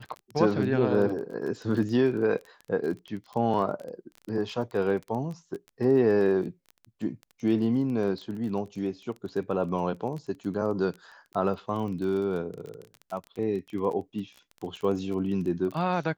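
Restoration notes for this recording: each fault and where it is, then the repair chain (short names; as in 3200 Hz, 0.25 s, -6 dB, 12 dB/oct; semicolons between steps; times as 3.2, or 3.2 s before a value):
crackle 21/s -34 dBFS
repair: de-click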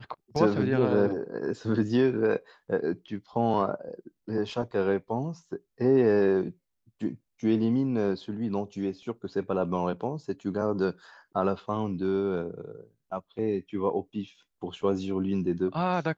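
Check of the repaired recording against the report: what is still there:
none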